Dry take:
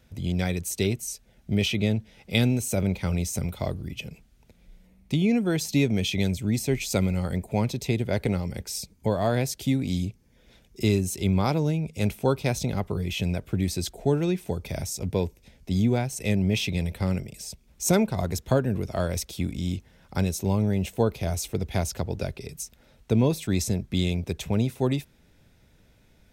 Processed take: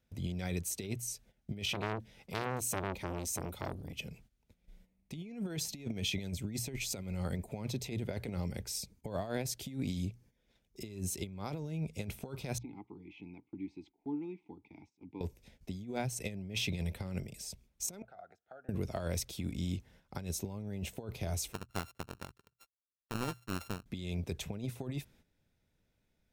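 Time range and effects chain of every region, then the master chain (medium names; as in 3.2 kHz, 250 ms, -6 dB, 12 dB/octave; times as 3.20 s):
1.69–4.01 s: treble shelf 7.8 kHz +3.5 dB + transformer saturation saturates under 2.2 kHz
12.58–15.21 s: vowel filter u + distance through air 98 m
18.02–18.69 s: compression 4:1, threshold -32 dBFS + two resonant band-passes 1 kHz, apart 0.92 oct
21.53–23.86 s: sorted samples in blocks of 32 samples + power-law waveshaper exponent 2
whole clip: hum notches 60/120 Hz; gate -53 dBFS, range -12 dB; compressor with a negative ratio -27 dBFS, ratio -0.5; trim -9 dB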